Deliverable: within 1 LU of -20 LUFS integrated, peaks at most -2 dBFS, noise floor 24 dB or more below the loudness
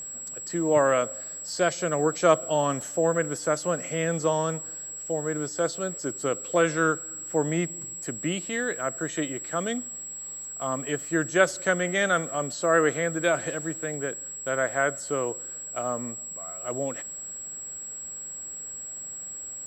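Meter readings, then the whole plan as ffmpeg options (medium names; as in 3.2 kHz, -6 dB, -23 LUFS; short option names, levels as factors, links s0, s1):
steady tone 7.7 kHz; tone level -35 dBFS; loudness -27.5 LUFS; peak level -5.5 dBFS; loudness target -20.0 LUFS
-> -af "bandreject=f=7700:w=30"
-af "volume=2.37,alimiter=limit=0.794:level=0:latency=1"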